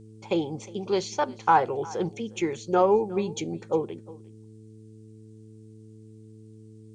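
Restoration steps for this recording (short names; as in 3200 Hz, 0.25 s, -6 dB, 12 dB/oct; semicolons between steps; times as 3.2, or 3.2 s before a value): de-hum 109.1 Hz, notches 4; expander -40 dBFS, range -21 dB; inverse comb 0.357 s -21 dB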